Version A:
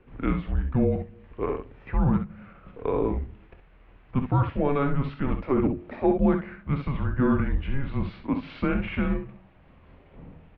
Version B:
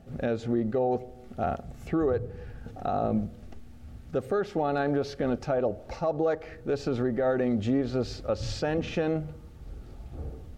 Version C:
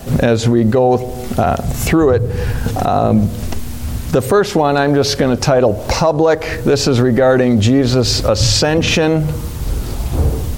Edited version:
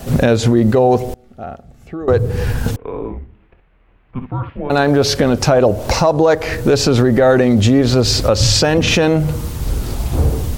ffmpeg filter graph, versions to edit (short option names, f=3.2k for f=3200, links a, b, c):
-filter_complex "[2:a]asplit=3[a][b][c];[a]atrim=end=1.142[d];[1:a]atrim=start=1.138:end=2.082[e];[b]atrim=start=2.078:end=2.762[f];[0:a]atrim=start=2.758:end=4.702[g];[c]atrim=start=4.698[h];[d][e]acrossfade=d=0.004:c1=hsin:c2=hsin[i];[i][f]acrossfade=d=0.004:c1=hsin:c2=hsin[j];[j][g]acrossfade=d=0.004:c1=hsin:c2=hsin[k];[k][h]acrossfade=d=0.004:c1=hsin:c2=hsin"